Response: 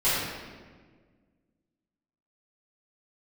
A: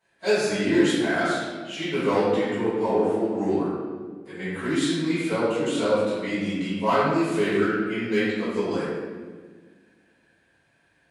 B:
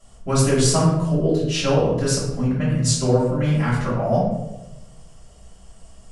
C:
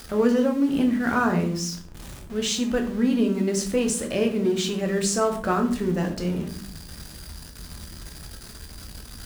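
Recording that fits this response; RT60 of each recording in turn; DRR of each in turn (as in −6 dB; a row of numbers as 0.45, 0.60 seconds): A; 1.6, 1.0, 0.55 seconds; −15.0, −10.0, 3.0 decibels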